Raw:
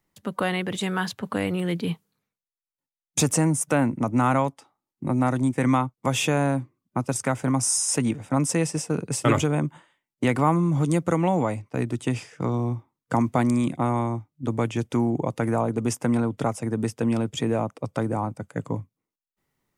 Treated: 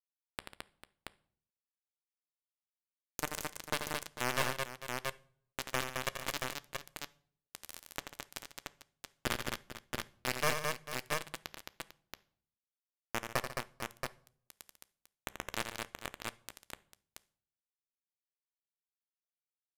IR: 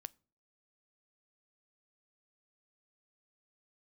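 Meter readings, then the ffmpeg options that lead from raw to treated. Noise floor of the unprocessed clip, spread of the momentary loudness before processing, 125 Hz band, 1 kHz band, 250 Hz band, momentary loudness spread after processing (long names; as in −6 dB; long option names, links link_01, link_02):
below −85 dBFS, 8 LU, −25.0 dB, −14.5 dB, −27.0 dB, 19 LU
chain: -filter_complex "[0:a]adynamicequalizer=threshold=0.00631:dfrequency=1800:dqfactor=1.4:tfrequency=1800:tqfactor=1.4:attack=5:release=100:ratio=0.375:range=2:mode=boostabove:tftype=bell,aecho=1:1:1.8:0.73,aeval=exprs='0.531*(cos(1*acos(clip(val(0)/0.531,-1,1)))-cos(1*PI/2))+0.075*(cos(2*acos(clip(val(0)/0.531,-1,1)))-cos(2*PI/2))+0.0075*(cos(4*acos(clip(val(0)/0.531,-1,1)))-cos(4*PI/2))+0.106*(cos(6*acos(clip(val(0)/0.531,-1,1)))-cos(6*PI/2))':channel_layout=same,acontrast=61,aeval=exprs='(tanh(11.2*val(0)+0.75)-tanh(0.75))/11.2':channel_layout=same,acrusher=bits=3:mix=0:aa=0.000001,aecho=1:1:85|145|216|447|678:0.422|0.188|0.631|0.211|0.596[link_01];[1:a]atrim=start_sample=2205,asetrate=28224,aresample=44100[link_02];[link_01][link_02]afir=irnorm=-1:irlink=0,volume=2dB"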